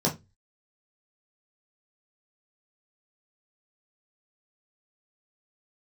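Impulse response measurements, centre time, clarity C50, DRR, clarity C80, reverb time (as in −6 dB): 16 ms, 14.0 dB, −3.5 dB, 23.5 dB, 0.20 s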